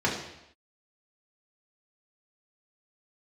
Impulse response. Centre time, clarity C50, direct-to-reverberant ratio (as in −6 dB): 38 ms, 5.0 dB, −4.5 dB